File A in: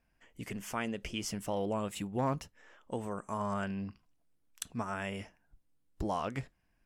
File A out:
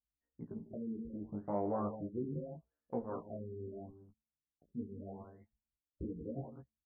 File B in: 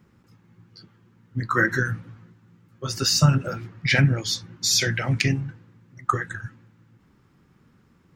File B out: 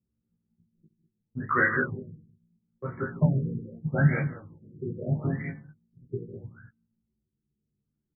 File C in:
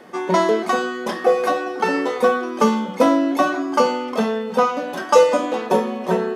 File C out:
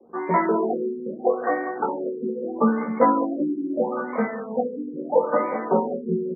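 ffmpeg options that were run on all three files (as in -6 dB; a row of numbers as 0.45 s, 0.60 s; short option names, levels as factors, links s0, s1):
-filter_complex "[0:a]highpass=81,bandreject=f=220.5:t=h:w=4,bandreject=f=441:t=h:w=4,bandreject=f=661.5:t=h:w=4,bandreject=f=882:t=h:w=4,bandreject=f=1102.5:t=h:w=4,bandreject=f=1323:t=h:w=4,bandreject=f=1543.5:t=h:w=4,bandreject=f=1764:t=h:w=4,bandreject=f=1984.5:t=h:w=4,bandreject=f=2205:t=h:w=4,bandreject=f=2425.5:t=h:w=4,bandreject=f=2646:t=h:w=4,bandreject=f=2866.5:t=h:w=4,bandreject=f=3087:t=h:w=4,bandreject=f=3307.5:t=h:w=4,bandreject=f=3528:t=h:w=4,bandreject=f=3748.5:t=h:w=4,bandreject=f=3969:t=h:w=4,bandreject=f=4189.5:t=h:w=4,bandreject=f=4410:t=h:w=4,bandreject=f=4630.5:t=h:w=4,bandreject=f=4851:t=h:w=4,bandreject=f=5071.5:t=h:w=4,bandreject=f=5292:t=h:w=4,bandreject=f=5512.5:t=h:w=4,bandreject=f=5733:t=h:w=4,bandreject=f=5953.5:t=h:w=4,bandreject=f=6174:t=h:w=4,bandreject=f=6394.5:t=h:w=4,bandreject=f=6615:t=h:w=4,bandreject=f=6835.5:t=h:w=4,bandreject=f=7056:t=h:w=4,bandreject=f=7276.5:t=h:w=4,anlmdn=1,highshelf=f=5200:g=6,flanger=delay=17:depth=2.9:speed=0.32,asplit=2[s0][s1];[s1]adelay=13,volume=0.631[s2];[s0][s2]amix=inputs=2:normalize=0,aecho=1:1:67|151|199:0.168|0.158|0.282,afftfilt=real='re*lt(b*sr/1024,470*pow(2400/470,0.5+0.5*sin(2*PI*0.77*pts/sr)))':imag='im*lt(b*sr/1024,470*pow(2400/470,0.5+0.5*sin(2*PI*0.77*pts/sr)))':win_size=1024:overlap=0.75"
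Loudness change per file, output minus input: -5.0 LU, -5.5 LU, -5.0 LU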